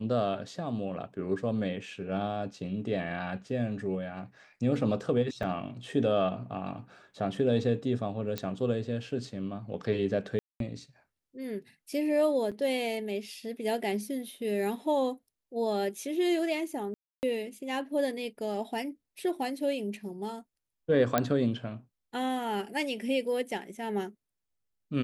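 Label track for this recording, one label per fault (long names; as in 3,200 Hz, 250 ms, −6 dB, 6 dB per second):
5.430000	5.430000	drop-out 3.1 ms
8.380000	8.380000	click −16 dBFS
10.390000	10.600000	drop-out 212 ms
12.510000	12.520000	drop-out 6.8 ms
16.940000	17.230000	drop-out 289 ms
21.180000	21.180000	click −10 dBFS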